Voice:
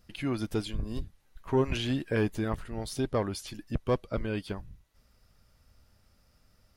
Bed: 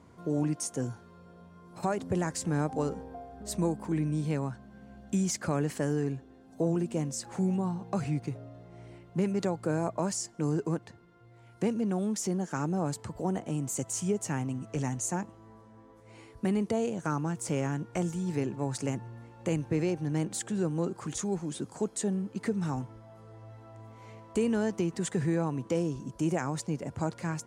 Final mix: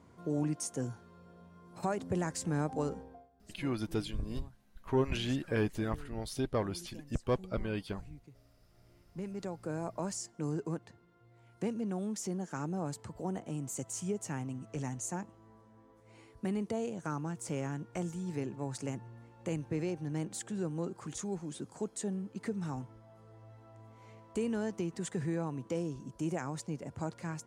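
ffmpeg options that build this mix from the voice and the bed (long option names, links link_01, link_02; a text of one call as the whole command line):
ffmpeg -i stem1.wav -i stem2.wav -filter_complex "[0:a]adelay=3400,volume=-3.5dB[link_01];[1:a]volume=12dB,afade=type=out:start_time=2.92:duration=0.38:silence=0.125893,afade=type=in:start_time=8.67:duration=1.42:silence=0.16788[link_02];[link_01][link_02]amix=inputs=2:normalize=0" out.wav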